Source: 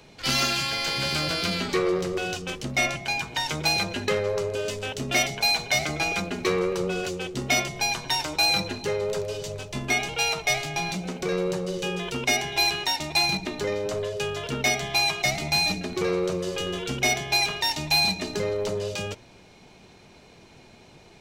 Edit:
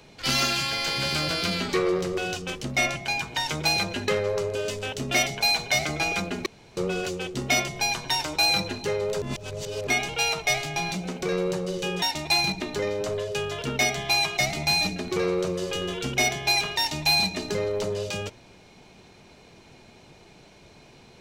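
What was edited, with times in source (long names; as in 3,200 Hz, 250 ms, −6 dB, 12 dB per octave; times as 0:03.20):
0:06.46–0:06.77: fill with room tone
0:09.22–0:09.87: reverse
0:12.02–0:12.87: remove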